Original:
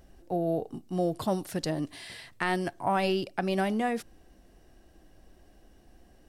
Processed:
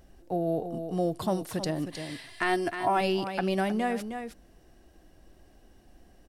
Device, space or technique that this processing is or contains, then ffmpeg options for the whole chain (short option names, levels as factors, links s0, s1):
ducked delay: -filter_complex "[0:a]asplit=3[s0][s1][s2];[s1]adelay=312,volume=0.398[s3];[s2]apad=whole_len=290829[s4];[s3][s4]sidechaincompress=threshold=0.0316:ratio=8:attack=6.3:release=137[s5];[s0][s5]amix=inputs=2:normalize=0,asettb=1/sr,asplit=3[s6][s7][s8];[s6]atrim=end=2.284[s9];[s7]atrim=start=2.28:end=3.01,asetpts=PTS-STARTPTS,afade=t=in:d=0.004:c=qsin,afade=t=out:st=0.726:d=0.004:c=qsin,aecho=1:1:2.9:0.6,atrim=end_sample=32193[s10];[s8]atrim=start=3.006[s11];[s9][s10]acrossfade=d=0.004:c1=hsin:c2=qsin[s12];[s12][s11]acrossfade=d=0.004:c1=qsin:c2=hsin"